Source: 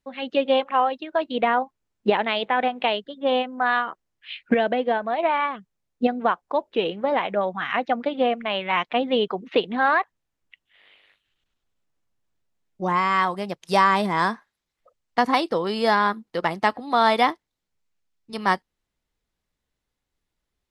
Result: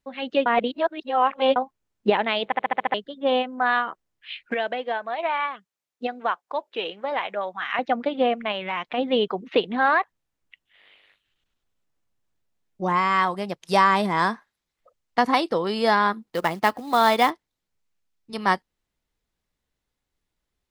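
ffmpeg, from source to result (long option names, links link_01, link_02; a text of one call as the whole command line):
ffmpeg -i in.wav -filter_complex "[0:a]asettb=1/sr,asplit=3[link_01][link_02][link_03];[link_01]atrim=end=4.474[link_04];[link_02]atrim=start=4.47:end=7.79,asetpts=PTS-STARTPTS,afade=type=in:duration=0.004:curve=qsin,afade=type=out:start_time=3.316:duration=0.004:curve=qsin,highpass=frequency=920:poles=1[link_05];[link_03]atrim=start=7.786[link_06];[link_04][link_05]acrossfade=duration=0.004:curve1=hsin:curve2=qsin[link_07];[link_07][link_06]acrossfade=duration=0.004:curve1=qsin:curve2=hsin,asplit=3[link_08][link_09][link_10];[link_08]afade=type=out:start_time=8.51:duration=0.02[link_11];[link_09]acompressor=threshold=-25dB:ratio=2.5:attack=3.2:release=140:knee=1:detection=peak,afade=type=in:start_time=8.51:duration=0.02,afade=type=out:start_time=8.97:duration=0.02[link_12];[link_10]afade=type=in:start_time=8.97:duration=0.02[link_13];[link_11][link_12][link_13]amix=inputs=3:normalize=0,asplit=3[link_14][link_15][link_16];[link_14]afade=type=out:start_time=16.22:duration=0.02[link_17];[link_15]acrusher=bits=5:mode=log:mix=0:aa=0.000001,afade=type=in:start_time=16.22:duration=0.02,afade=type=out:start_time=17.29:duration=0.02[link_18];[link_16]afade=type=in:start_time=17.29:duration=0.02[link_19];[link_17][link_18][link_19]amix=inputs=3:normalize=0,asplit=10[link_20][link_21][link_22][link_23][link_24][link_25][link_26][link_27][link_28][link_29];[link_20]atrim=end=0.462[link_30];[link_21]atrim=start=0.458:end=1.562,asetpts=PTS-STARTPTS,areverse[link_31];[link_22]atrim=start=1.558:end=2.522[link_32];[link_23]atrim=start=2.448:end=2.522[link_33];[link_24]atrim=start=2.448:end=2.522[link_34];[link_25]atrim=start=2.448:end=2.522[link_35];[link_26]atrim=start=2.448:end=2.522[link_36];[link_27]atrim=start=2.448:end=2.522[link_37];[link_28]atrim=start=2.448:end=2.522[link_38];[link_29]atrim=start=2.938[link_39];[link_30][link_31]acrossfade=duration=0.004:curve1=hsin:curve2=hsin[link_40];[link_40][link_32]acrossfade=duration=0.004:curve1=hsin:curve2=hsin[link_41];[link_41][link_33]acrossfade=duration=0.004:curve1=hsin:curve2=hsin[link_42];[link_42][link_34]acrossfade=duration=0.004:curve1=hsin:curve2=hsin[link_43];[link_43][link_35]acrossfade=duration=0.004:curve1=hsin:curve2=hsin[link_44];[link_44][link_36]acrossfade=duration=0.004:curve1=hsin:curve2=hsin[link_45];[link_45][link_37]acrossfade=duration=0.004:curve1=hsin:curve2=hsin[link_46];[link_46][link_38]acrossfade=duration=0.004:curve1=hsin:curve2=hsin[link_47];[link_47][link_39]acrossfade=duration=0.004:curve1=hsin:curve2=hsin" out.wav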